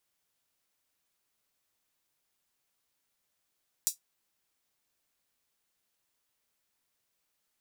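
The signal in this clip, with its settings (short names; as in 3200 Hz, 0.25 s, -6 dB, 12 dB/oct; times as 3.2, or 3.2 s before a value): closed hi-hat, high-pass 6100 Hz, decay 0.13 s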